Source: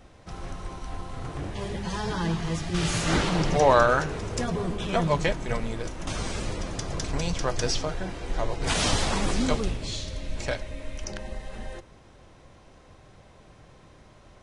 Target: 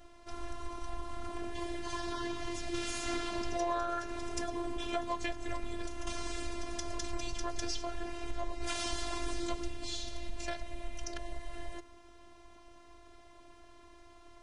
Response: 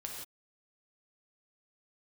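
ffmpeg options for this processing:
-af "afftfilt=real='hypot(re,im)*cos(PI*b)':imag='0':win_size=512:overlap=0.75,acompressor=threshold=-32dB:ratio=3"

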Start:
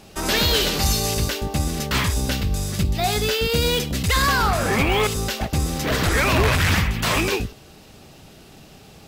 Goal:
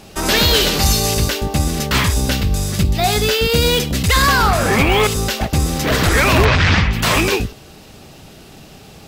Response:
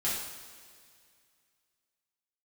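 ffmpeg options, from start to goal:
-filter_complex "[0:a]asettb=1/sr,asplit=3[link_01][link_02][link_03];[link_01]atrim=end=6.454[link_04];[link_02]atrim=start=6.45:end=6.93,asetpts=PTS-STARTPTS,afade=type=in:duration=0.004:curve=qsin,afade=type=out:start_time=0.476:duration=0.004:curve=qsin,lowpass=frequency=5500:width=0.5412,lowpass=frequency=5500:width=1.3066[link_05];[link_03]atrim=start=6.926[link_06];[link_04][link_05]acrossfade=duration=0.004:curve1=hsin:curve2=qsin[link_07];[link_07][link_06]acrossfade=duration=0.004:curve1=qsin:curve2=hsin,volume=5.5dB"

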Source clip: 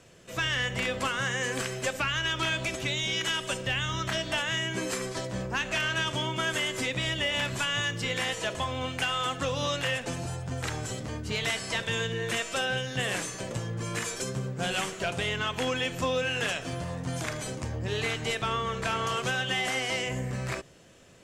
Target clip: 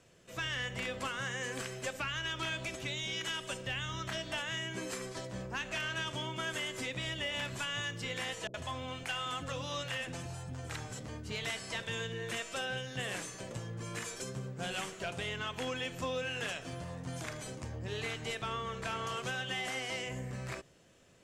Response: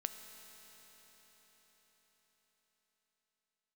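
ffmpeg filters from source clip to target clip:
-filter_complex "[0:a]asettb=1/sr,asplit=3[link_01][link_02][link_03];[link_01]atrim=end=8.474[link_04];[link_02]atrim=start=8.47:end=10.99,asetpts=PTS-STARTPTS,afade=type=in:duration=0.004:curve=qsin,afade=type=out:start_time=2.516:duration=0.004:curve=qsin,acrossover=split=410[link_05][link_06];[link_06]adelay=70[link_07];[link_05][link_07]amix=inputs=2:normalize=0,atrim=end_sample=111132[link_08];[link_03]atrim=start=10.986[link_09];[link_04][link_08]acrossfade=duration=0.004:curve1=hsin:curve2=qsin[link_10];[link_10][link_09]acrossfade=duration=0.004:curve1=qsin:curve2=hsin,volume=-8dB"

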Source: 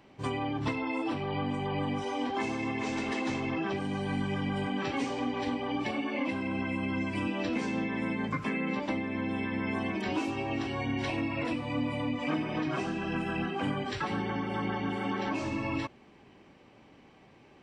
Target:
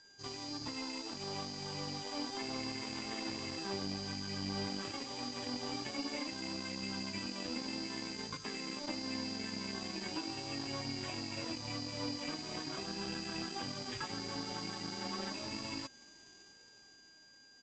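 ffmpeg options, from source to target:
ffmpeg -i in.wav -af "dynaudnorm=framelen=160:gausssize=17:maxgain=8.5dB,asuperstop=centerf=5300:order=8:qfactor=1.5,acompressor=threshold=-28dB:ratio=5,flanger=delay=2.1:depth=9:regen=49:speed=0.12:shape=triangular,aeval=exprs='val(0)+0.0158*sin(2*PI*4800*n/s)':channel_layout=same,aresample=16000,aeval=exprs='sgn(val(0))*max(abs(val(0))-0.0133,0)':channel_layout=same,aresample=44100,volume=-3dB" out.wav

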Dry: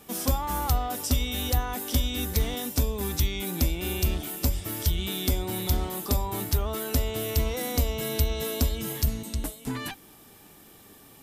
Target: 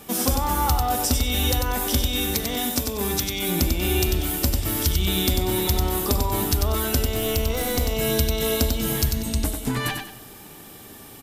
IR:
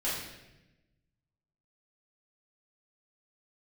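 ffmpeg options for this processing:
-filter_complex "[0:a]acompressor=threshold=-26dB:ratio=6,asettb=1/sr,asplit=3[link_01][link_02][link_03];[link_01]atrim=end=2.084[link_04];[link_02]atrim=start=2.08:end=3.49,asetpts=PTS-STARTPTS,afade=type=in:duration=0.004:curve=qsin,afade=type=out:start_time=1.406:duration=0.004:curve=qsin,highpass=frequency=180:poles=1[link_05];[link_03]atrim=start=3.486[link_06];[link_04][link_05]acrossfade=duration=0.004:curve1=hsin:curve2=qsin[link_07];[link_07][link_06]acrossfade=duration=0.004:curve1=qsin:curve2=hsin,asettb=1/sr,asplit=3[link_08][link_09][link_10];[link_08]atrim=end=7.034[link_11];[link_09]atrim=start=7.03:end=7.81,asetpts=PTS-STARTPTS,afade=type=in:duration=0.004:curve=qsin,afade=type=out:start_time=0.776:duration=0.004:curve=qsin,aeval=exprs='(tanh(12.6*val(0)+0.35)-tanh(0.35))/12.6':channel_layout=same[link_12];[link_10]atrim=start=7.806[link_13];[link_11][link_12]acrossfade=duration=0.004:curve1=hsin:curve2=qsin[link_14];[link_14][link_13]acrossfade=duration=0.004:curve1=qsin:curve2=hsin,aecho=1:1:95|190|285|380:0.562|0.169|0.0506|0.0152,asplit=2[link_15][link_16];[1:a]atrim=start_sample=2205[link_17];[link_16][link_17]afir=irnorm=-1:irlink=0,volume=-22dB[link_18];[link_15][link_18]amix=inputs=2:normalize=0,volume=7dB"

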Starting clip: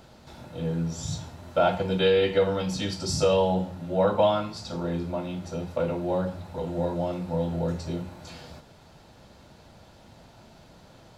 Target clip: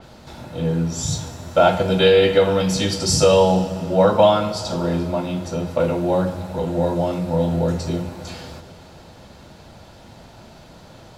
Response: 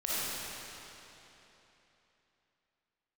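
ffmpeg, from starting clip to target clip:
-filter_complex "[0:a]asplit=2[link_01][link_02];[1:a]atrim=start_sample=2205[link_03];[link_02][link_03]afir=irnorm=-1:irlink=0,volume=-20dB[link_04];[link_01][link_04]amix=inputs=2:normalize=0,adynamicequalizer=threshold=0.00501:dfrequency=5500:dqfactor=0.7:tfrequency=5500:tqfactor=0.7:attack=5:release=100:ratio=0.375:range=3:mode=boostabove:tftype=highshelf,volume=7dB"

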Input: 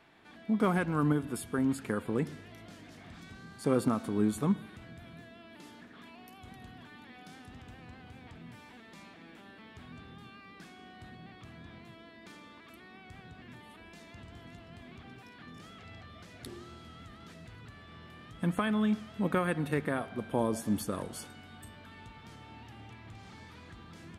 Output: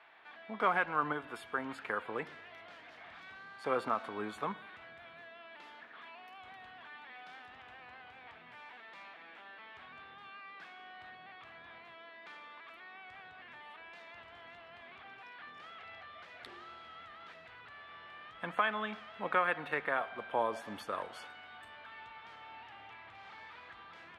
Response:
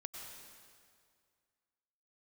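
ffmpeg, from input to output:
-filter_complex "[0:a]acrossover=split=580 3500:gain=0.0631 1 0.0631[link_01][link_02][link_03];[link_01][link_02][link_03]amix=inputs=3:normalize=0,volume=4.5dB"

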